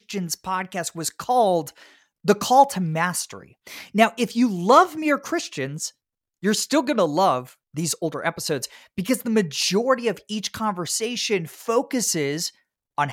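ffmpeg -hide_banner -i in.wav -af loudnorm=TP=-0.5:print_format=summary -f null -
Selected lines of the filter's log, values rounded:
Input Integrated:    -22.9 LUFS
Input True Peak:      -1.9 dBTP
Input LRA:             3.7 LU
Input Threshold:     -33.3 LUFS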